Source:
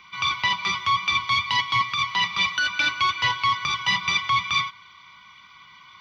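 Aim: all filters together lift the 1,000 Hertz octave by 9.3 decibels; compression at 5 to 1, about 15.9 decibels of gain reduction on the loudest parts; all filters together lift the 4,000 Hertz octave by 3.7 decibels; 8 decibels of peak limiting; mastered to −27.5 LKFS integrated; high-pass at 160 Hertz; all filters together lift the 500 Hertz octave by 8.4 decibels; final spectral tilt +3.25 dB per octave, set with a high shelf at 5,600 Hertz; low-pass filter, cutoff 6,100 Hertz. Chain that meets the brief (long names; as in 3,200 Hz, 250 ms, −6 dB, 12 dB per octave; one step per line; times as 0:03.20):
high-pass filter 160 Hz
low-pass filter 6,100 Hz
parametric band 500 Hz +8.5 dB
parametric band 1,000 Hz +8.5 dB
parametric band 4,000 Hz +7 dB
high-shelf EQ 5,600 Hz −7.5 dB
downward compressor 5 to 1, threshold −29 dBFS
level +5.5 dB
brickwall limiter −18.5 dBFS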